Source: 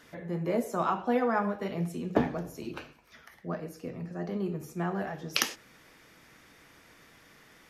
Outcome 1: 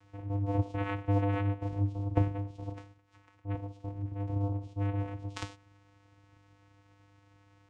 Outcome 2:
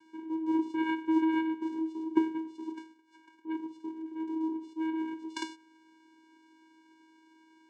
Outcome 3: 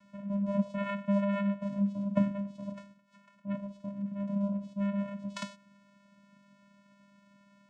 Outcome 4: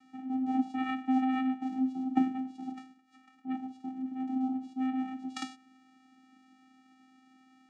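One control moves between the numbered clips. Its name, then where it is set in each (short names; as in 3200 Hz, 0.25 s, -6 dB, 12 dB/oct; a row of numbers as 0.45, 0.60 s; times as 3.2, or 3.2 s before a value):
vocoder, frequency: 100, 320, 200, 260 Hz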